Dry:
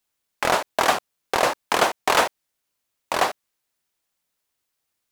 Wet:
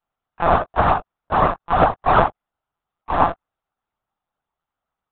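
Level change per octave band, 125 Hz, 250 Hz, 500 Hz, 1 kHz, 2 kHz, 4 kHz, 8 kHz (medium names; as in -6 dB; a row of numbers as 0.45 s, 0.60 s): +17.0 dB, +7.5 dB, +3.5 dB, +5.5 dB, -2.5 dB, -11.0 dB, under -40 dB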